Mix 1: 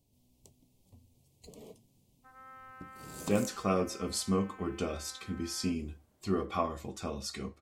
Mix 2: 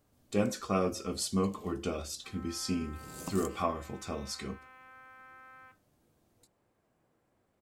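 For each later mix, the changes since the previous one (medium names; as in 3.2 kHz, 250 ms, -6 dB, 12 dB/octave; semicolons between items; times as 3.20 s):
speech: entry -2.95 s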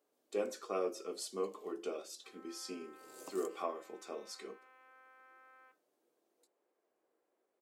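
master: add ladder high-pass 330 Hz, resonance 45%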